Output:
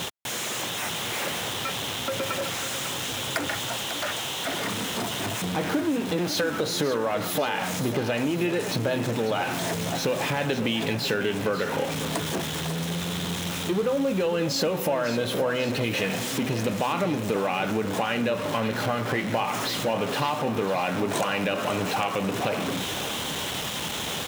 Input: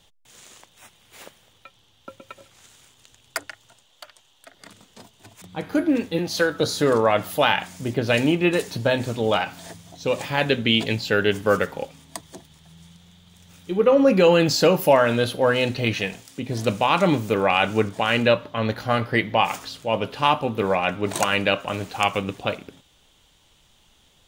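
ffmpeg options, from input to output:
ffmpeg -i in.wav -filter_complex "[0:a]aeval=exprs='val(0)+0.5*0.0708*sgn(val(0))':channel_layout=same,highpass=130,highshelf=frequency=4100:gain=-6.5,bandreject=frequency=4600:width=17,asplit=2[link_01][link_02];[link_02]alimiter=limit=-13.5dB:level=0:latency=1,volume=3dB[link_03];[link_01][link_03]amix=inputs=2:normalize=0,acompressor=threshold=-16dB:ratio=6,aecho=1:1:546|1092|1638|2184|2730|3276:0.266|0.152|0.0864|0.0493|0.0281|0.016,volume=-6.5dB" out.wav

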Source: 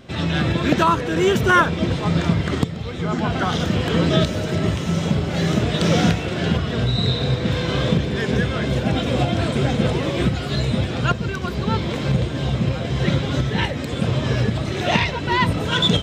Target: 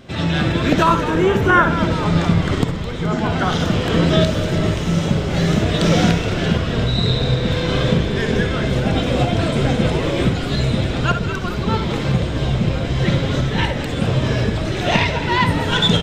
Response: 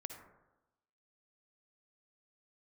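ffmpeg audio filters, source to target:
-filter_complex "[0:a]asettb=1/sr,asplit=3[link_01][link_02][link_03];[link_01]atrim=end=1.104[link_04];[link_02]atrim=start=1.1:end=1.7,asetpts=PTS-STARTPTS,afade=type=in:duration=0.004:curve=qsin,afade=type=out:start_time=0.596:duration=0.004:curve=qsin,acrossover=split=2600[link_05][link_06];[link_06]acompressor=threshold=-41dB:ratio=4:attack=1:release=60[link_07];[link_05][link_07]amix=inputs=2:normalize=0[link_08];[link_03]atrim=start=1.696[link_09];[link_04][link_08]acrossfade=duration=0.004:curve1=hsin:curve2=qsin[link_10];[link_10][link_09]acrossfade=duration=0.004:curve1=qsin:curve2=hsin,asplit=9[link_11][link_12][link_13][link_14][link_15][link_16][link_17][link_18][link_19];[link_12]adelay=212,afreqshift=-73,volume=-11.5dB[link_20];[link_13]adelay=424,afreqshift=-146,volume=-15.4dB[link_21];[link_14]adelay=636,afreqshift=-219,volume=-19.3dB[link_22];[link_15]adelay=848,afreqshift=-292,volume=-23.1dB[link_23];[link_16]adelay=1060,afreqshift=-365,volume=-27dB[link_24];[link_17]adelay=1272,afreqshift=-438,volume=-30.9dB[link_25];[link_18]adelay=1484,afreqshift=-511,volume=-34.8dB[link_26];[link_19]adelay=1696,afreqshift=-584,volume=-38.6dB[link_27];[link_11][link_20][link_21][link_22][link_23][link_24][link_25][link_26][link_27]amix=inputs=9:normalize=0[link_28];[1:a]atrim=start_sample=2205,atrim=end_sample=3528[link_29];[link_28][link_29]afir=irnorm=-1:irlink=0,volume=6dB"

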